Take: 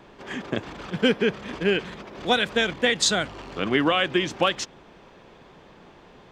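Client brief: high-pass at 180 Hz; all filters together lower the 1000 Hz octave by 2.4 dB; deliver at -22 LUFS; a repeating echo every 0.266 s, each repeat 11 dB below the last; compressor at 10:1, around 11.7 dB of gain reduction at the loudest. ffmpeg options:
-af "highpass=180,equalizer=f=1k:t=o:g=-3.5,acompressor=threshold=-29dB:ratio=10,aecho=1:1:266|532|798:0.282|0.0789|0.0221,volume=12.5dB"

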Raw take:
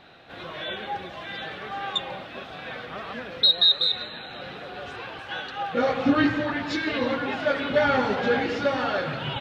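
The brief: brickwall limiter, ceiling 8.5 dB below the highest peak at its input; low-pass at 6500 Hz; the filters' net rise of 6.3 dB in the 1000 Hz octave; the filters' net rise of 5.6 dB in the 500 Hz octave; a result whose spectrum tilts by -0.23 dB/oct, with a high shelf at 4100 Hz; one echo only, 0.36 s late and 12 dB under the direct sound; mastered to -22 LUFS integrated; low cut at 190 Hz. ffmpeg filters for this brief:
-af "highpass=190,lowpass=6.5k,equalizer=f=500:t=o:g=4.5,equalizer=f=1k:t=o:g=6.5,highshelf=f=4.1k:g=8.5,alimiter=limit=-13.5dB:level=0:latency=1,aecho=1:1:360:0.251,volume=2.5dB"

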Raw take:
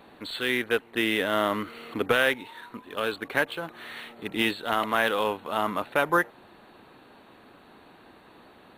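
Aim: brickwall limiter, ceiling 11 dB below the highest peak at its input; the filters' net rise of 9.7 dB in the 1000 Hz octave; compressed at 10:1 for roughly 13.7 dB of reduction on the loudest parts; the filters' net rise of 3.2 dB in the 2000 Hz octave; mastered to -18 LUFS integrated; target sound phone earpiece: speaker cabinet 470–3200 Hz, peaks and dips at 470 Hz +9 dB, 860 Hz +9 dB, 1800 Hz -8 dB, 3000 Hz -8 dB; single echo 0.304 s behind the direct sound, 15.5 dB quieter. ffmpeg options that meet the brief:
-af "equalizer=f=1k:t=o:g=6,equalizer=f=2k:t=o:g=7.5,acompressor=threshold=-26dB:ratio=10,alimiter=limit=-21dB:level=0:latency=1,highpass=470,equalizer=f=470:t=q:w=4:g=9,equalizer=f=860:t=q:w=4:g=9,equalizer=f=1.8k:t=q:w=4:g=-8,equalizer=f=3k:t=q:w=4:g=-8,lowpass=f=3.2k:w=0.5412,lowpass=f=3.2k:w=1.3066,aecho=1:1:304:0.168,volume=16.5dB"

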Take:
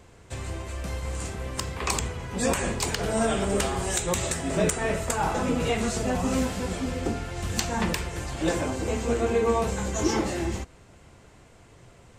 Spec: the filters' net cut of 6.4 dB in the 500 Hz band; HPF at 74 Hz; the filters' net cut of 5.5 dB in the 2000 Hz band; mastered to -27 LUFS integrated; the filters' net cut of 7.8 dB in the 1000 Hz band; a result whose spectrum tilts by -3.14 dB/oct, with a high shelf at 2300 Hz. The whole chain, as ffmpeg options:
-af "highpass=74,equalizer=f=500:t=o:g=-6,equalizer=f=1k:t=o:g=-7.5,equalizer=f=2k:t=o:g=-8.5,highshelf=f=2.3k:g=7,volume=1dB"

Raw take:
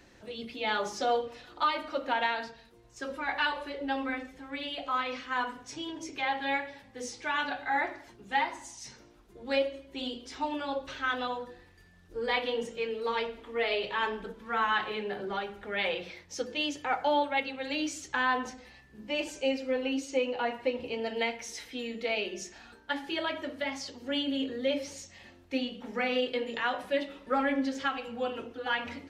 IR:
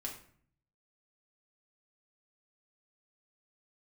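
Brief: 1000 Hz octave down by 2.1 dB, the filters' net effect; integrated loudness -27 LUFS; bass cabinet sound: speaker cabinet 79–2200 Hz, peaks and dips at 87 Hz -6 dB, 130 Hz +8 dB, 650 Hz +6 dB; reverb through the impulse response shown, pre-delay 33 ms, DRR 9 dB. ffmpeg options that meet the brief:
-filter_complex "[0:a]equalizer=f=1k:t=o:g=-4.5,asplit=2[a][b];[1:a]atrim=start_sample=2205,adelay=33[c];[b][c]afir=irnorm=-1:irlink=0,volume=-8dB[d];[a][d]amix=inputs=2:normalize=0,highpass=f=79:w=0.5412,highpass=f=79:w=1.3066,equalizer=f=87:t=q:w=4:g=-6,equalizer=f=130:t=q:w=4:g=8,equalizer=f=650:t=q:w=4:g=6,lowpass=f=2.2k:w=0.5412,lowpass=f=2.2k:w=1.3066,volume=6dB"

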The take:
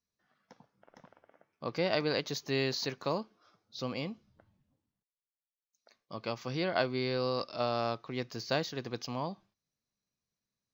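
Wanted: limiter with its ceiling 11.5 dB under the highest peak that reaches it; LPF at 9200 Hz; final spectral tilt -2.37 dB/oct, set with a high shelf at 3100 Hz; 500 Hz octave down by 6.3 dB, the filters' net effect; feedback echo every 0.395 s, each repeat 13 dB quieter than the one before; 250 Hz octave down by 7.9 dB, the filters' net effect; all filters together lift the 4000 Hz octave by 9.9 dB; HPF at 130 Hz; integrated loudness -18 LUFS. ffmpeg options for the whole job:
-af "highpass=130,lowpass=9.2k,equalizer=f=250:t=o:g=-8,equalizer=f=500:t=o:g=-6,highshelf=f=3.1k:g=3.5,equalizer=f=4k:t=o:g=9,alimiter=limit=-21.5dB:level=0:latency=1,aecho=1:1:395|790|1185:0.224|0.0493|0.0108,volume=16.5dB"

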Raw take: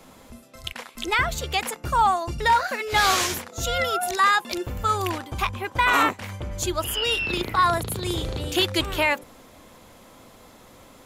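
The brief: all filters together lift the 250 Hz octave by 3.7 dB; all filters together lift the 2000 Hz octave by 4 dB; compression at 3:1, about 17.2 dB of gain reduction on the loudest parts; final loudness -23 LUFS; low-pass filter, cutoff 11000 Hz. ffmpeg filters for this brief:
-af "lowpass=11k,equalizer=f=250:t=o:g=5.5,equalizer=f=2k:t=o:g=5,acompressor=threshold=-38dB:ratio=3,volume=13dB"

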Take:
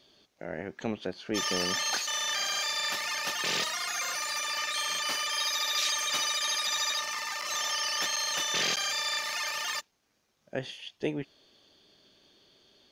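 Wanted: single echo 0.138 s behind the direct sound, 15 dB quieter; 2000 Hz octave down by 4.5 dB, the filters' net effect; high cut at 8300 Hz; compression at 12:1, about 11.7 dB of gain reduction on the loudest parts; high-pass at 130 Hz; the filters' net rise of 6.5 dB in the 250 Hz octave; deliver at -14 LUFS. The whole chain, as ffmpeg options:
-af "highpass=130,lowpass=8.3k,equalizer=f=250:t=o:g=9,equalizer=f=2k:t=o:g=-5.5,acompressor=threshold=-33dB:ratio=12,aecho=1:1:138:0.178,volume=21.5dB"

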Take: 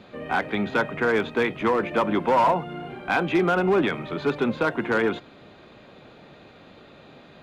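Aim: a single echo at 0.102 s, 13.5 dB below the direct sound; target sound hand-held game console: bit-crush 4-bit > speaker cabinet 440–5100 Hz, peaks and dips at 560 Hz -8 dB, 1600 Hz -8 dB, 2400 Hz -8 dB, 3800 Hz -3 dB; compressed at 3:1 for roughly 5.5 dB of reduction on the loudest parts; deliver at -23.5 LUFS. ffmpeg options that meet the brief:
-af "acompressor=threshold=-24dB:ratio=3,aecho=1:1:102:0.211,acrusher=bits=3:mix=0:aa=0.000001,highpass=440,equalizer=f=560:t=q:w=4:g=-8,equalizer=f=1.6k:t=q:w=4:g=-8,equalizer=f=2.4k:t=q:w=4:g=-8,equalizer=f=3.8k:t=q:w=4:g=-3,lowpass=f=5.1k:w=0.5412,lowpass=f=5.1k:w=1.3066,volume=7dB"

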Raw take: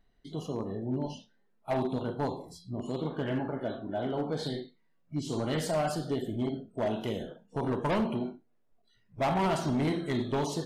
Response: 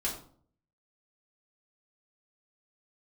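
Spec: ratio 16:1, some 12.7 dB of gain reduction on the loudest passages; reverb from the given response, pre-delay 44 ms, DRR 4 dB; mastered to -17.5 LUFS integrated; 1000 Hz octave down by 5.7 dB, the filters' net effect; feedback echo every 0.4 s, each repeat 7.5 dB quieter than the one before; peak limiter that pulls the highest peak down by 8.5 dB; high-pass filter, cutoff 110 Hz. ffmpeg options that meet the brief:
-filter_complex "[0:a]highpass=110,equalizer=f=1k:t=o:g=-8,acompressor=threshold=-39dB:ratio=16,alimiter=level_in=12.5dB:limit=-24dB:level=0:latency=1,volume=-12.5dB,aecho=1:1:400|800|1200|1600|2000:0.422|0.177|0.0744|0.0312|0.0131,asplit=2[a][b];[1:a]atrim=start_sample=2205,adelay=44[c];[b][c]afir=irnorm=-1:irlink=0,volume=-8.5dB[d];[a][d]amix=inputs=2:normalize=0,volume=26.5dB"

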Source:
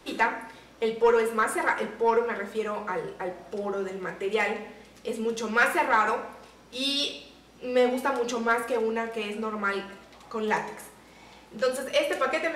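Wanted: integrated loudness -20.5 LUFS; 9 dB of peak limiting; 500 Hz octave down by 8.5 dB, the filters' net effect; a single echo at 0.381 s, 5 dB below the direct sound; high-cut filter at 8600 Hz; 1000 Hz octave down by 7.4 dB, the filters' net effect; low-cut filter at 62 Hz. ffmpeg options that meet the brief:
-af "highpass=62,lowpass=8.6k,equalizer=f=500:t=o:g=-8,equalizer=f=1k:t=o:g=-7.5,alimiter=limit=-23.5dB:level=0:latency=1,aecho=1:1:381:0.562,volume=13.5dB"

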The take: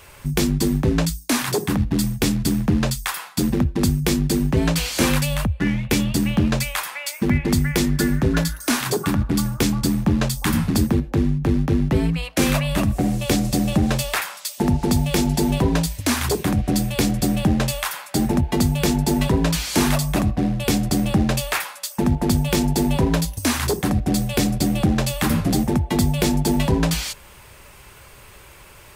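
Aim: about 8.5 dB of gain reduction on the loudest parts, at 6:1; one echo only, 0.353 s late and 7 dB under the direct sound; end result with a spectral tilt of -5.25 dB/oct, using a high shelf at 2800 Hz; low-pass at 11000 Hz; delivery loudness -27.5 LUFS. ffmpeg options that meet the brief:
-af "lowpass=11k,highshelf=f=2.8k:g=-3,acompressor=threshold=-23dB:ratio=6,aecho=1:1:353:0.447,volume=-0.5dB"

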